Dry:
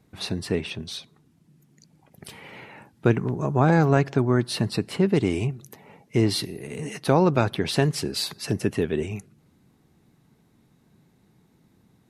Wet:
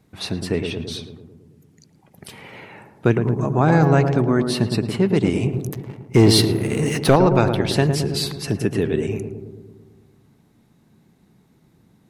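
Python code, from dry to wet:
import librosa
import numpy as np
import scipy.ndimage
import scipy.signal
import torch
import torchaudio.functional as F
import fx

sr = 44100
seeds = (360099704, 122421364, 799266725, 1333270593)

y = fx.leveller(x, sr, passes=2, at=(5.53, 7.16))
y = fx.echo_filtered(y, sr, ms=110, feedback_pct=69, hz=1000.0, wet_db=-5.5)
y = y * 10.0 ** (2.5 / 20.0)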